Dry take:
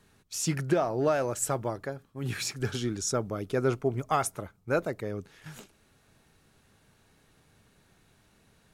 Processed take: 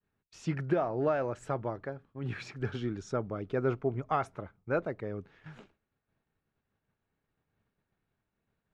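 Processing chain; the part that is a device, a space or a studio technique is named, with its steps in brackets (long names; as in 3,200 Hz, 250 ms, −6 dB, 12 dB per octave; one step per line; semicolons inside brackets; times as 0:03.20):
hearing-loss simulation (low-pass filter 2,400 Hz 12 dB per octave; downward expander −53 dBFS)
level −3 dB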